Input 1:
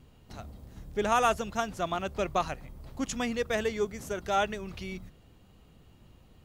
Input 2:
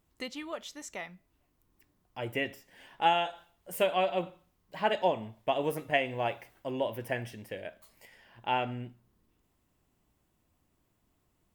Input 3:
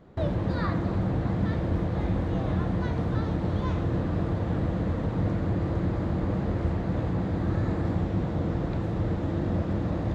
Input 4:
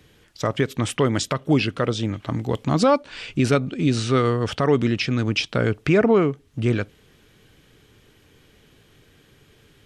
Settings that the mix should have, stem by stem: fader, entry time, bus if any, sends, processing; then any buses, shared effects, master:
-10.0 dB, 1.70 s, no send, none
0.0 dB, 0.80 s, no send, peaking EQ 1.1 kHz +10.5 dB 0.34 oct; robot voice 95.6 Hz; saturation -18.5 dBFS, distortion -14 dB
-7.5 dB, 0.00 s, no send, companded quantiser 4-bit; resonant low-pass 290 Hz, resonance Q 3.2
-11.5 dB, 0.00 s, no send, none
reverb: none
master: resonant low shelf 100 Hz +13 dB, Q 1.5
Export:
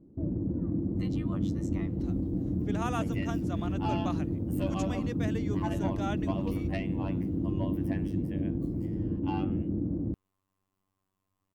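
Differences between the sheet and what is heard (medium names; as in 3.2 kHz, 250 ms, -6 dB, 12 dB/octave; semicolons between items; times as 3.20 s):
stem 2 0.0 dB -> -7.5 dB; stem 4: muted; master: missing resonant low shelf 100 Hz +13 dB, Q 1.5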